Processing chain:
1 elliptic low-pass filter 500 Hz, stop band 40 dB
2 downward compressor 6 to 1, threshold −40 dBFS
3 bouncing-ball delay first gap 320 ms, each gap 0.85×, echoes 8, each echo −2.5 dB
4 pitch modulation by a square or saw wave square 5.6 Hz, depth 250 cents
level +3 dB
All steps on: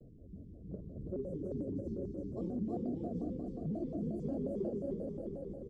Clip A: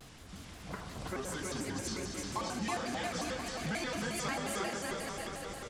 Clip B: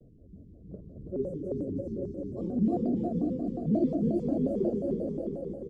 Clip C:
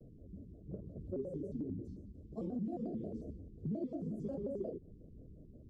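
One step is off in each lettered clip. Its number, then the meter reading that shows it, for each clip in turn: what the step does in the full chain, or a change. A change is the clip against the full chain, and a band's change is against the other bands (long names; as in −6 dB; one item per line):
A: 1, 1 kHz band +17.5 dB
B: 2, average gain reduction 3.5 dB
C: 3, change in momentary loudness spread +4 LU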